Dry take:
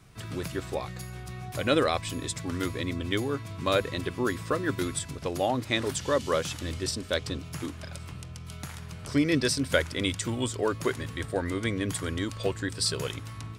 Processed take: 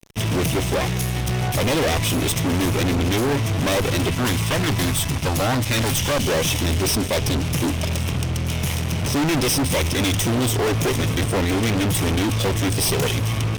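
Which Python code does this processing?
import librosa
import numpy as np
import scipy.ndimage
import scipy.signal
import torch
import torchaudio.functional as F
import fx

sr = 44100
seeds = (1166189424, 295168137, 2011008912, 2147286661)

y = fx.lower_of_two(x, sr, delay_ms=0.34)
y = fx.peak_eq(y, sr, hz=400.0, db=-12.0, octaves=0.8, at=(4.1, 6.2))
y = fx.fuzz(y, sr, gain_db=41.0, gate_db=-49.0)
y = y * librosa.db_to_amplitude(-5.0)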